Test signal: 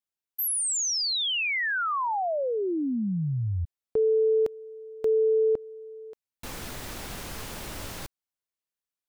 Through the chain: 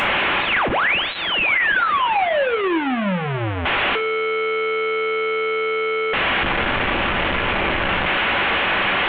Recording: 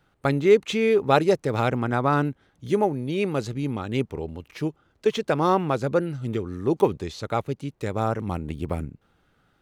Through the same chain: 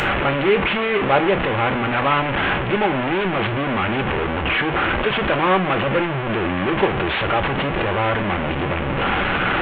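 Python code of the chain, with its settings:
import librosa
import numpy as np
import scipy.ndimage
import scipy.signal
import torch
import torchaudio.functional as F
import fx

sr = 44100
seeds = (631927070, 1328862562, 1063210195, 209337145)

y = fx.delta_mod(x, sr, bps=16000, step_db=-14.5)
y = fx.low_shelf(y, sr, hz=300.0, db=-7.0)
y = fx.rev_double_slope(y, sr, seeds[0], early_s=0.3, late_s=1.6, knee_db=-22, drr_db=7.0)
y = y * librosa.db_to_amplitude(2.5)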